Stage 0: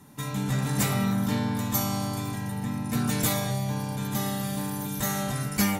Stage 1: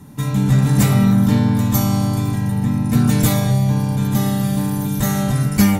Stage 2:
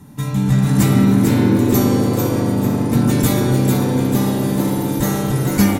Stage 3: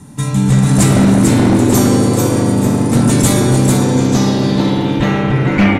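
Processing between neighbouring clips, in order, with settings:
low shelf 310 Hz +11 dB; gain +4.5 dB
frequency-shifting echo 0.445 s, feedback 42%, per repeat +130 Hz, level -5 dB; on a send at -8 dB: reverb RT60 4.1 s, pre-delay 36 ms; on the sum: gain -1 dB
wavefolder -8.5 dBFS; low-pass sweep 8800 Hz -> 2400 Hz, 3.74–5.24; gain +4.5 dB

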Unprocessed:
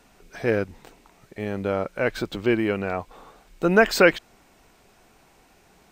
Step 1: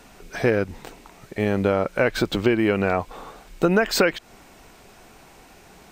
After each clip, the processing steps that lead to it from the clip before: compressor 12:1, threshold -23 dBFS, peak gain reduction 13.5 dB; gain +8 dB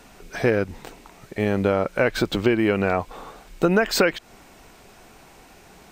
nothing audible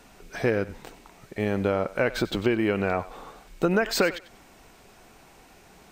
thinning echo 95 ms, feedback 23%, level -16 dB; gain -4 dB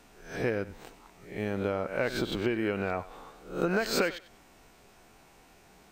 spectral swells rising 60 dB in 0.44 s; gain -6.5 dB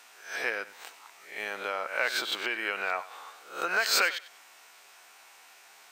HPF 1100 Hz 12 dB/oct; gain +7.5 dB

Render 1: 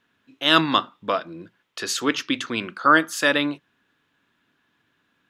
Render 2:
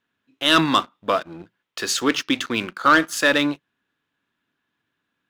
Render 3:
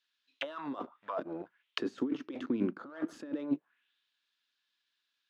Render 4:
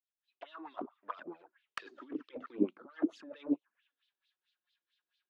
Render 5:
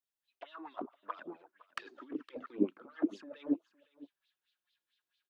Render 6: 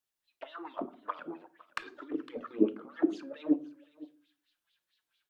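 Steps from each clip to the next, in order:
sample leveller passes 2; gain -4.5 dB
negative-ratio compressor -28 dBFS, ratio -1; auto-wah 270–4600 Hz, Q 2.6, down, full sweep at -23.5 dBFS
opening faded in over 0.83 s; LFO band-pass sine 4.5 Hz 330–4100 Hz; envelope flanger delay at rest 5.6 ms, full sweep at -37.5 dBFS; gain +8 dB
echo 0.511 s -20.5 dB
wow and flutter 99 cents; reverb RT60 0.40 s, pre-delay 7 ms, DRR 13 dB; gain +4 dB

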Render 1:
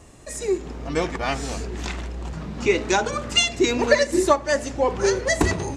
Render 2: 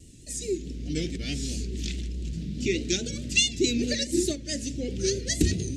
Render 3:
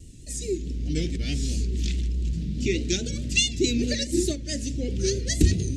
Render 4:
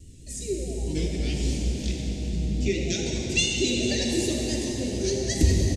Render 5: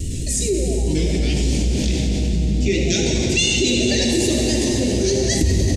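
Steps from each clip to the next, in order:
Chebyshev band-stop 270–3500 Hz, order 2; vibrato 4.7 Hz 72 cents
low shelf 110 Hz +9 dB
on a send: frequency-shifting echo 98 ms, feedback 47%, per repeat +140 Hz, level -13 dB; on the sum: plate-style reverb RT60 5 s, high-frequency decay 0.8×, DRR -0.5 dB; gain -3 dB
fast leveller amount 70%

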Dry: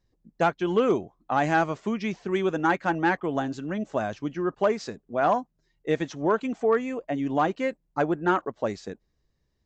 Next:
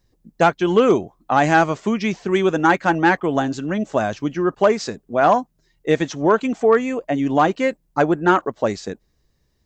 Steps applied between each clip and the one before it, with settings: high shelf 6300 Hz +7 dB; gain +7.5 dB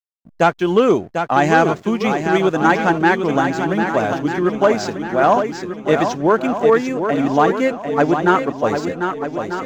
backlash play -40 dBFS; swung echo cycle 1.243 s, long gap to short 1.5:1, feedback 40%, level -7 dB; gain +1 dB

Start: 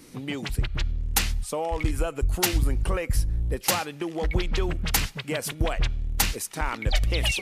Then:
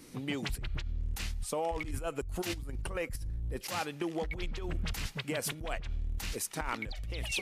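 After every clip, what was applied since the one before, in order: negative-ratio compressor -28 dBFS, ratio -1; gain -7 dB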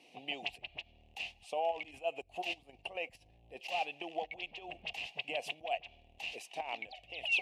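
double band-pass 1400 Hz, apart 1.9 oct; gain +8 dB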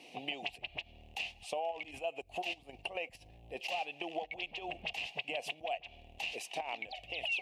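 compressor 3:1, threshold -44 dBFS, peak gain reduction 13 dB; gain +7 dB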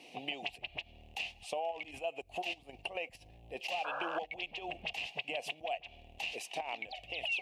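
painted sound noise, 3.84–4.19, 480–1700 Hz -39 dBFS

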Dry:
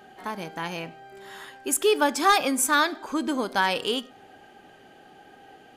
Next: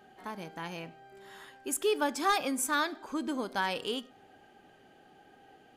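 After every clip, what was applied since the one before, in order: low shelf 360 Hz +3 dB; gain -8.5 dB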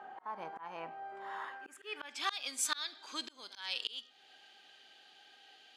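pre-echo 51 ms -22 dB; band-pass sweep 1000 Hz -> 4000 Hz, 1.43–2.41; auto swell 0.451 s; gain +14.5 dB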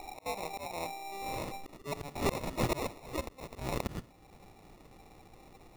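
sample-and-hold 28×; wrapped overs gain 24 dB; gain +5 dB

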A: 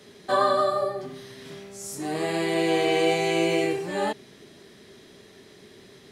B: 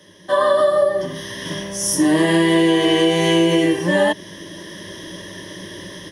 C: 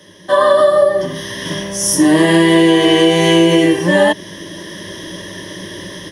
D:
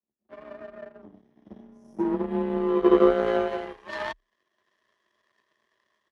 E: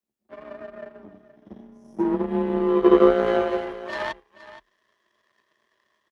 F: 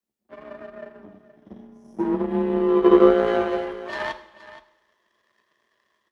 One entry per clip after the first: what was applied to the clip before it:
AGC gain up to 14 dB; ripple EQ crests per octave 1.2, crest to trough 15 dB; compressor, threshold -12 dBFS, peak gain reduction 7 dB
hard clip -6.5 dBFS, distortion -43 dB; gain +5 dB
band-pass sweep 210 Hz -> 1200 Hz, 2.58–3.94; power-law curve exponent 2; frequency shift +32 Hz
echo 0.472 s -15.5 dB; gain +3 dB
two-slope reverb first 0.82 s, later 2.5 s, from -24 dB, DRR 10.5 dB

